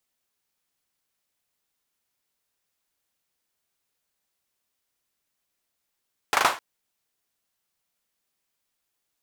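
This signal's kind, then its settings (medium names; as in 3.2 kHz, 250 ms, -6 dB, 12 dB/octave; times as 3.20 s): hand clap length 0.26 s, apart 39 ms, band 1 kHz, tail 0.30 s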